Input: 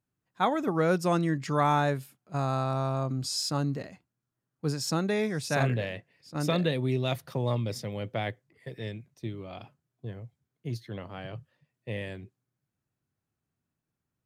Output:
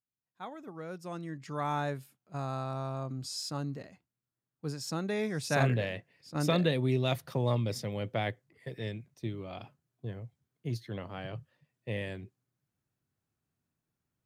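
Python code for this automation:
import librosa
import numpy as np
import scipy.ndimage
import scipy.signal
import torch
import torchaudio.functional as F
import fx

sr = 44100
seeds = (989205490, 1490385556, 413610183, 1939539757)

y = fx.gain(x, sr, db=fx.line((0.91, -17.0), (1.81, -7.0), (4.9, -7.0), (5.6, -0.5)))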